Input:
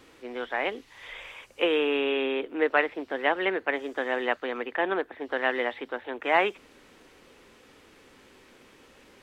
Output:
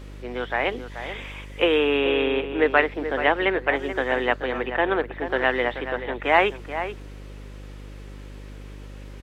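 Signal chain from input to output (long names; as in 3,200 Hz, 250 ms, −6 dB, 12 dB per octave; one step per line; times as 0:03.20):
slap from a distant wall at 74 metres, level −10 dB
hum with harmonics 50 Hz, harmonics 12, −44 dBFS −7 dB per octave
level +4.5 dB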